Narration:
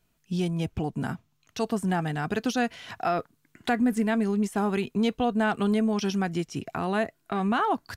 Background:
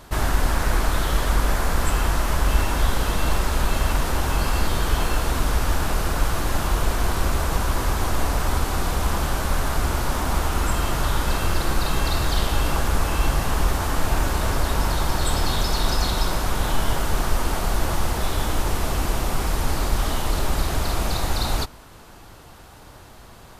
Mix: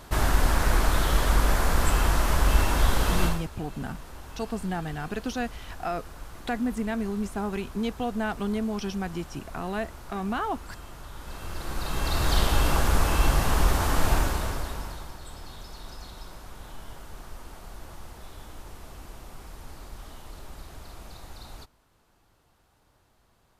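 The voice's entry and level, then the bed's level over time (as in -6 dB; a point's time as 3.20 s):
2.80 s, -4.5 dB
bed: 3.25 s -1.5 dB
3.49 s -20.5 dB
11.10 s -20.5 dB
12.33 s -1 dB
14.13 s -1 dB
15.20 s -20.5 dB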